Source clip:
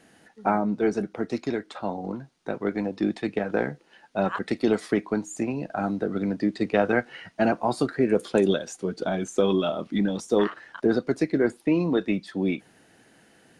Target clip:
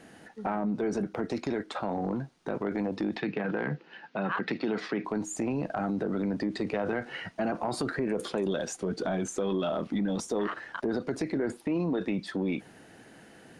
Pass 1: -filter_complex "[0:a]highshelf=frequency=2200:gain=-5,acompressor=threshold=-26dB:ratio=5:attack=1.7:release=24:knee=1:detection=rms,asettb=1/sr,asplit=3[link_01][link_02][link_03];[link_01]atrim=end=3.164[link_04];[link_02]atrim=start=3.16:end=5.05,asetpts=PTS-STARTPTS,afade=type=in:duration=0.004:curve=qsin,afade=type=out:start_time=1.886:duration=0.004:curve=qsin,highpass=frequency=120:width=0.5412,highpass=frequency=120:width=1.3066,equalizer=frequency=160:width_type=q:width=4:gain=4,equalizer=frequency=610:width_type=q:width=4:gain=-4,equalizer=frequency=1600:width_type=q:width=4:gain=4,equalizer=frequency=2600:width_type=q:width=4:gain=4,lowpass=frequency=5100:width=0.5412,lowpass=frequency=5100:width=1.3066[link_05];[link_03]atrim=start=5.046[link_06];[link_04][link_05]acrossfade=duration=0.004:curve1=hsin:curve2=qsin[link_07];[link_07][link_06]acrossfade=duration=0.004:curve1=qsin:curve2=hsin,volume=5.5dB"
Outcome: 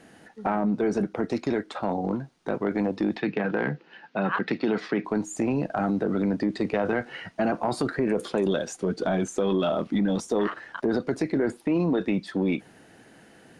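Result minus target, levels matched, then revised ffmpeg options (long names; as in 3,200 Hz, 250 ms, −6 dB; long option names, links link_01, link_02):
downward compressor: peak gain reduction −5 dB
-filter_complex "[0:a]highshelf=frequency=2200:gain=-5,acompressor=threshold=-32.5dB:ratio=5:attack=1.7:release=24:knee=1:detection=rms,asettb=1/sr,asplit=3[link_01][link_02][link_03];[link_01]atrim=end=3.164[link_04];[link_02]atrim=start=3.16:end=5.05,asetpts=PTS-STARTPTS,afade=type=in:duration=0.004:curve=qsin,afade=type=out:start_time=1.886:duration=0.004:curve=qsin,highpass=frequency=120:width=0.5412,highpass=frequency=120:width=1.3066,equalizer=frequency=160:width_type=q:width=4:gain=4,equalizer=frequency=610:width_type=q:width=4:gain=-4,equalizer=frequency=1600:width_type=q:width=4:gain=4,equalizer=frequency=2600:width_type=q:width=4:gain=4,lowpass=frequency=5100:width=0.5412,lowpass=frequency=5100:width=1.3066[link_05];[link_03]atrim=start=5.046[link_06];[link_04][link_05]acrossfade=duration=0.004:curve1=hsin:curve2=qsin[link_07];[link_07][link_06]acrossfade=duration=0.004:curve1=qsin:curve2=hsin,volume=5.5dB"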